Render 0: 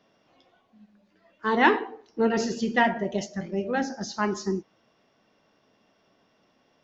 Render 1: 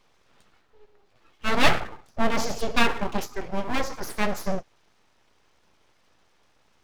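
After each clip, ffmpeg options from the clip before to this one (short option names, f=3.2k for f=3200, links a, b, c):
-af "aeval=exprs='abs(val(0))':c=same,volume=3.5dB"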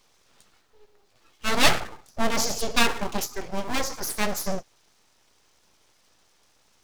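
-af "bass=f=250:g=-1,treble=f=4k:g=11,volume=-1dB"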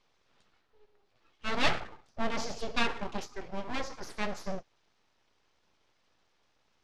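-af "lowpass=4k,volume=-7.5dB"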